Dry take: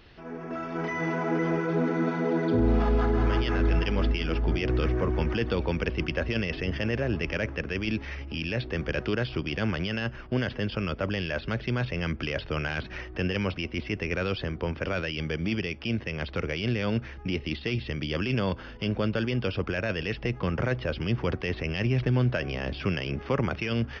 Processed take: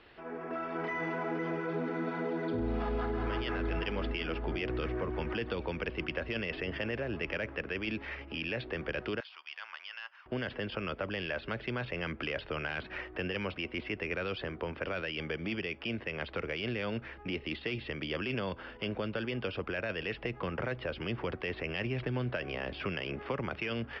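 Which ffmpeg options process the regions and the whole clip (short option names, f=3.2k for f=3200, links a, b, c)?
-filter_complex "[0:a]asettb=1/sr,asplit=3[a][b][c];[a]atrim=end=9.204[d];[b]atrim=start=9.2:end=10.26,asetpts=PTS-STARTPTS,afade=t=in:d=0.004:c=qsin,afade=t=out:st=1.056:d=0.004:c=qsin,highpass=f=970:t=q:w=2.6,aderivative[e];[c]atrim=start=10.256[f];[d][e]acrossfade=d=0.004:c1=hsin:c2=qsin[g];[g][f]acrossfade=d=0.004:c1=qsin:c2=hsin,acrossover=split=220|3000[h][i][j];[i]acompressor=threshold=-32dB:ratio=6[k];[h][k][j]amix=inputs=3:normalize=0,lowpass=f=5.3k:w=0.5412,lowpass=f=5.3k:w=1.3066,bass=f=250:g=-12,treble=f=4k:g=-12"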